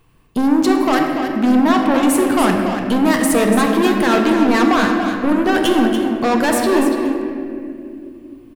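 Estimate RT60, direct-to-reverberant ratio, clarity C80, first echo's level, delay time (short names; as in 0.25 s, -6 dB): 2.5 s, 0.5 dB, 2.5 dB, -8.0 dB, 0.288 s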